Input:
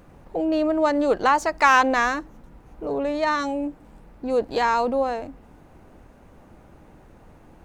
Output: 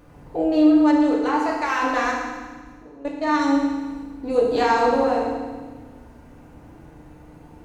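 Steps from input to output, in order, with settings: 0.66–3.34 s: level held to a coarse grid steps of 24 dB; FDN reverb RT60 1.4 s, low-frequency decay 1.45×, high-frequency decay 1×, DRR -4 dB; trim -2.5 dB

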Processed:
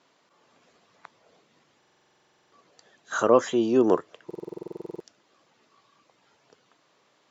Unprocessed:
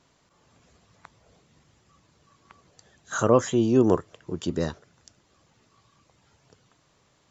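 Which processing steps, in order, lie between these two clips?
band-pass 290–5200 Hz; buffer glitch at 1.78/4.26 s, samples 2048, times 15; trim +1.5 dB

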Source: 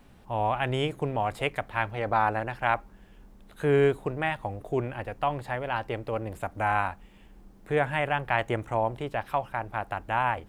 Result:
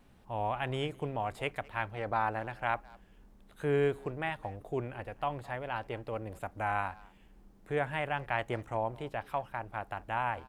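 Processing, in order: speakerphone echo 210 ms, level -22 dB; wow and flutter 28 cents; trim -6.5 dB

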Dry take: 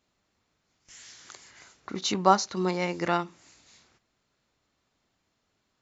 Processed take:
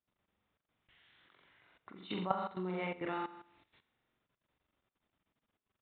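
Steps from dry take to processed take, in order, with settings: resampled via 8 kHz; flutter echo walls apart 7.5 m, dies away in 0.62 s; level held to a coarse grid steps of 15 dB; trim -7.5 dB

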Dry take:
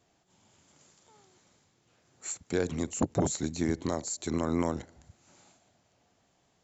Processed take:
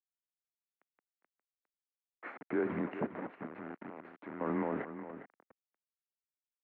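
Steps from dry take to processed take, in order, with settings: spectral noise reduction 10 dB; level rider gain up to 12.5 dB; peak limiter -17 dBFS, peak gain reduction 13 dB; 3.06–4.41 s: compression 12:1, threshold -35 dBFS, peak gain reduction 14 dB; bit crusher 6-bit; delay 407 ms -11.5 dB; mistuned SSB -63 Hz 300–2100 Hz; trim -3 dB

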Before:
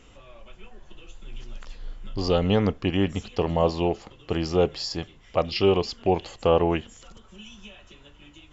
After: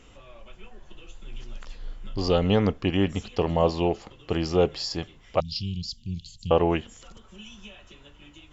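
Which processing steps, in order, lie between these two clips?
5.40–6.51 s: elliptic band-stop 170–4000 Hz, stop band 70 dB

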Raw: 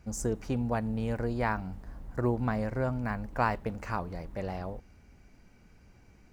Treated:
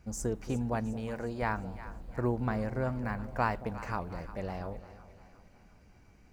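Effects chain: 0.93–1.42 s: bass shelf 190 Hz -10 dB; two-band feedback delay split 750 Hz, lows 225 ms, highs 356 ms, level -14 dB; trim -2 dB

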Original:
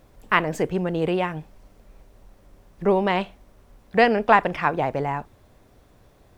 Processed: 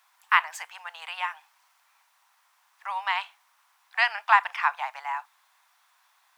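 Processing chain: steep high-pass 870 Hz 48 dB/octave

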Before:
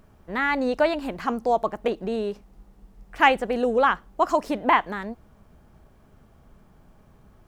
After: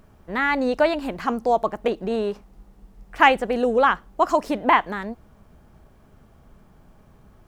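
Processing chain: 2.10–3.23 s: dynamic bell 1.1 kHz, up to +6 dB, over -46 dBFS, Q 1; trim +2 dB

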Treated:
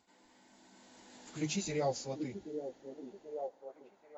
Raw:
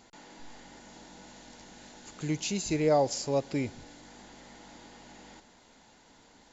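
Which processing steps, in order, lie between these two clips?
Doppler pass-by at 2.23 s, 15 m/s, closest 8.6 m; high-pass 50 Hz 6 dB/octave; hum notches 50/100/150 Hz; plain phase-vocoder stretch 0.64×; repeats whose band climbs or falls 782 ms, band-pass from 340 Hz, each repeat 0.7 oct, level -3 dB

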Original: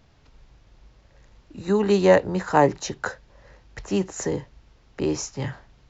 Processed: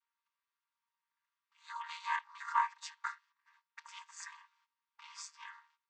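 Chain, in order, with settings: vocoder on a held chord major triad, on D#3; gate -57 dBFS, range -16 dB; brick-wall FIR high-pass 840 Hz

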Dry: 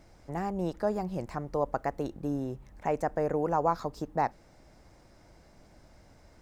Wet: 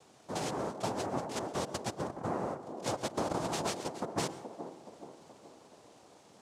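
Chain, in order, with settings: compression, threshold -31 dBFS, peak gain reduction 10 dB; noise-vocoded speech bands 2; feedback echo behind a band-pass 424 ms, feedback 49%, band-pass 420 Hz, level -7.5 dB; plate-style reverb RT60 0.69 s, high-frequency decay 0.5×, pre-delay 100 ms, DRR 15 dB

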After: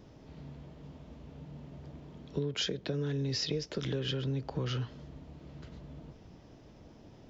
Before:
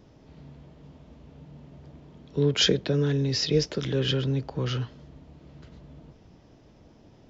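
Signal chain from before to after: compression 12:1, threshold -30 dBFS, peak gain reduction 14 dB

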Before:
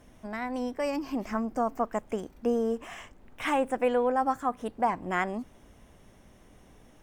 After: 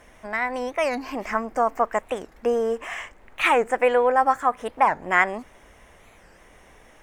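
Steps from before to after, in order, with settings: graphic EQ 125/250/500/1000/2000/8000 Hz -5/-5/+4/+4/+10/+4 dB; warped record 45 rpm, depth 250 cents; trim +2.5 dB

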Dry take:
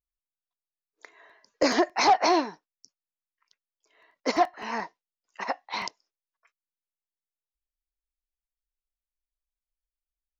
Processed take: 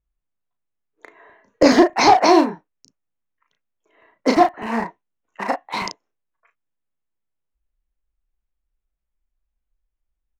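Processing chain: local Wiener filter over 9 samples; bass shelf 330 Hz +11 dB; doubling 35 ms -5.5 dB; trim +5.5 dB

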